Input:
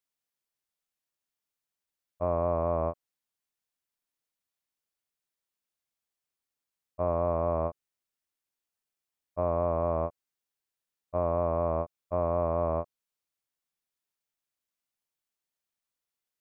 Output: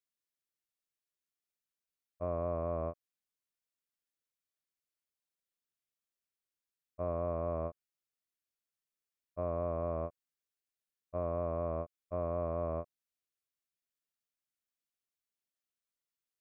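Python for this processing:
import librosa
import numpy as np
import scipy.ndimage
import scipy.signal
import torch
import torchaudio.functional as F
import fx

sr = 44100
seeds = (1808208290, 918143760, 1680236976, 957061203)

y = fx.peak_eq(x, sr, hz=870.0, db=-10.0, octaves=0.38)
y = F.gain(torch.from_numpy(y), -6.0).numpy()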